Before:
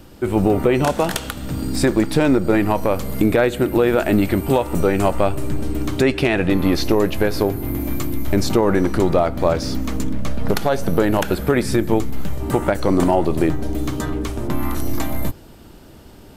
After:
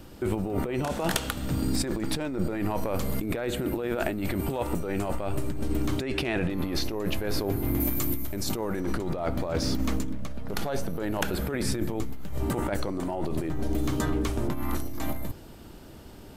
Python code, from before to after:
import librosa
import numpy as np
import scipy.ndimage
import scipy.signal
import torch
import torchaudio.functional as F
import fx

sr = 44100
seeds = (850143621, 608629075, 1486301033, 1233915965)

y = fx.high_shelf(x, sr, hz=7100.0, db=11.5, at=(7.8, 8.8))
y = fx.over_compress(y, sr, threshold_db=-21.0, ratio=-1.0)
y = y * 10.0 ** (-6.5 / 20.0)